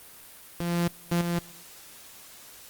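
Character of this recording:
a buzz of ramps at a fixed pitch in blocks of 256 samples
tremolo saw up 3.3 Hz, depth 60%
a quantiser's noise floor 8 bits, dither triangular
Opus

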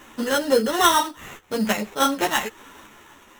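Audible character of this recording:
a quantiser's noise floor 10 bits, dither triangular
sample-and-hold tremolo
aliases and images of a low sample rate 4,700 Hz, jitter 0%
a shimmering, thickened sound

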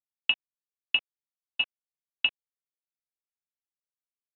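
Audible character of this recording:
a buzz of ramps at a fixed pitch in blocks of 8 samples
chopped level 2.5 Hz, depth 60%, duty 85%
a quantiser's noise floor 6 bits, dither none
G.726

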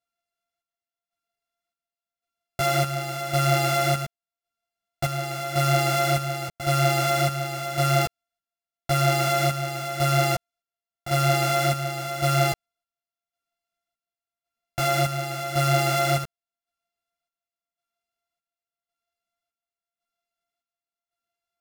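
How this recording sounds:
a buzz of ramps at a fixed pitch in blocks of 64 samples
chopped level 0.9 Hz, depth 60%, duty 55%
a shimmering, thickened sound

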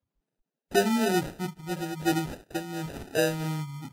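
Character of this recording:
phaser sweep stages 2, 2.9 Hz, lowest notch 520–1,900 Hz
aliases and images of a low sample rate 1,100 Hz, jitter 0%
Ogg Vorbis

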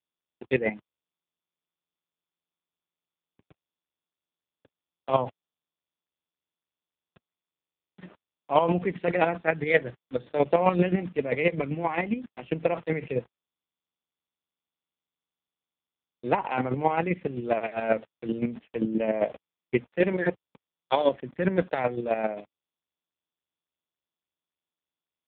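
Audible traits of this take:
a quantiser's noise floor 8 bits, dither none
chopped level 7.6 Hz, depth 60%, duty 25%
AMR narrowband

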